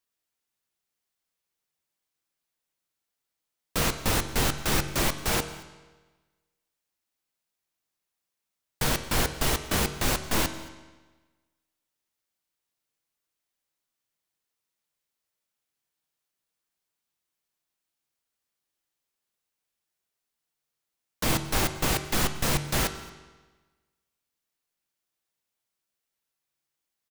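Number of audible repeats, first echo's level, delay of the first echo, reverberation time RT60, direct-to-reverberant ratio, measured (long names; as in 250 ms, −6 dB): 1, −23.0 dB, 224 ms, 1.3 s, 9.0 dB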